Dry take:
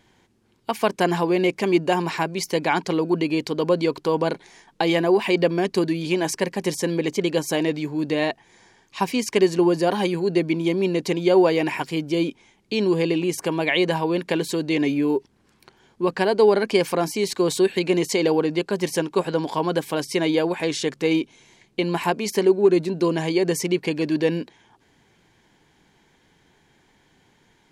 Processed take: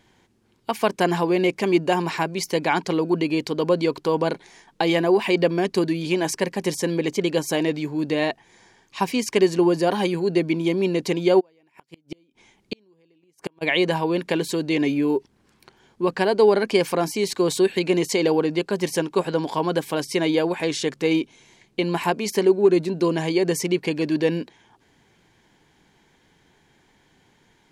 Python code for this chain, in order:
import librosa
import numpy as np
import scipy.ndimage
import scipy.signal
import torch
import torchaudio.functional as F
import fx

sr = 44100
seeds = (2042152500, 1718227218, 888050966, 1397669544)

y = fx.gate_flip(x, sr, shuts_db=-15.0, range_db=-39, at=(11.39, 13.61), fade=0.02)